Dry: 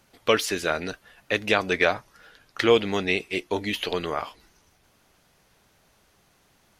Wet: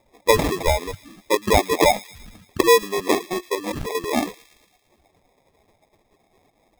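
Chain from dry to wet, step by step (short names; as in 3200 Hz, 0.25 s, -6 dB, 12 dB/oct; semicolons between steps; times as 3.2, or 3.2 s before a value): spectral contrast raised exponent 2.4; HPF 550 Hz 12 dB/oct; 3.55–3.95 negative-ratio compressor -37 dBFS, ratio -1; sample-and-hold 30×; on a send: thin delay 0.113 s, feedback 60%, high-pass 2300 Hz, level -17 dB; on the sum: gain +9 dB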